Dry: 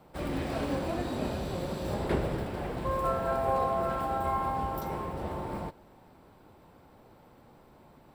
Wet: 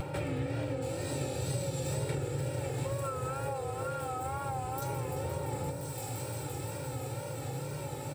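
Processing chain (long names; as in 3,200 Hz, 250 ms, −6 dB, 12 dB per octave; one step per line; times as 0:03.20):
comb filter 2.2 ms, depth 57%
convolution reverb, pre-delay 3 ms, DRR 1 dB
upward compression, threshold −42 dBFS
high-pass filter 94 Hz 24 dB per octave
delay with a high-pass on its return 172 ms, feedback 83%, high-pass 4,600 Hz, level −9.5 dB
pitch vibrato 2.1 Hz 80 cents
thirty-one-band graphic EQ 125 Hz +9 dB, 200 Hz −12 dB, 1,000 Hz −7 dB, 2,500 Hz +6 dB, 8,000 Hz +8 dB, 16,000 Hz −9 dB
downward compressor 10 to 1, threshold −43 dBFS, peak gain reduction 22 dB
bass and treble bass +6 dB, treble −2 dB, from 0:00.81 treble +11 dB
level +8.5 dB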